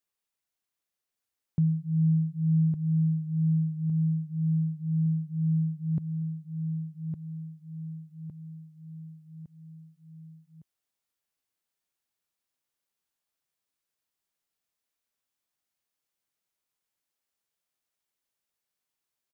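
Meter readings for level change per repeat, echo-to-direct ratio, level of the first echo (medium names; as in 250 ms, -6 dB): -6.0 dB, -5.0 dB, -6.0 dB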